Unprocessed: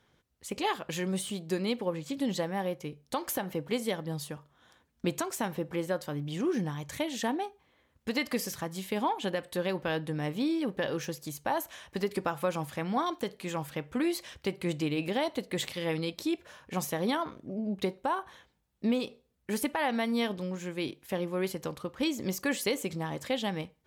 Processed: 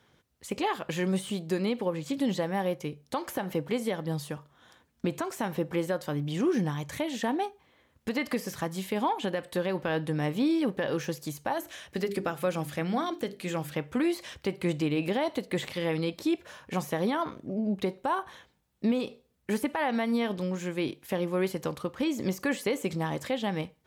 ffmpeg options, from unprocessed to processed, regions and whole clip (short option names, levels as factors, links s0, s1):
-filter_complex "[0:a]asettb=1/sr,asplit=3[s0][s1][s2];[s0]atrim=end=11.534[s3];[s1]atrim=start=11.53:end=13.74,asetpts=PTS-STARTPTS,afade=t=in:d=0.004:c=qsin,afade=t=out:st=2.206:d=0.004:c=qsin,equalizer=f=970:t=o:w=0.58:g=-7.5,bandreject=f=50:t=h:w=6,bandreject=f=100:t=h:w=6,bandreject=f=150:t=h:w=6,bandreject=f=200:t=h:w=6,bandreject=f=250:t=h:w=6,bandreject=f=300:t=h:w=6,bandreject=f=350:t=h:w=6,bandreject=f=400:t=h:w=6[s4];[s2]atrim=start=13.736[s5];[s3][s4]acrossfade=d=0.004:c1=hsin:c2=qsin[s6];[s6][s5]acrossfade=d=0.004:c1=qsin:c2=hsin,acrossover=split=2500[s7][s8];[s8]acompressor=threshold=0.00708:ratio=4:attack=1:release=60[s9];[s7][s9]amix=inputs=2:normalize=0,highpass=61,alimiter=limit=0.075:level=0:latency=1:release=153,volume=1.58"